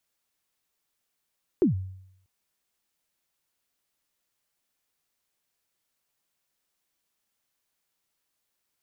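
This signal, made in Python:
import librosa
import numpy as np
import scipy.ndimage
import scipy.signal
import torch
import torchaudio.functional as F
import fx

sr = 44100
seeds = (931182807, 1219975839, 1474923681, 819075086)

y = fx.drum_kick(sr, seeds[0], length_s=0.64, level_db=-15.0, start_hz=410.0, end_hz=94.0, sweep_ms=122.0, decay_s=0.74, click=False)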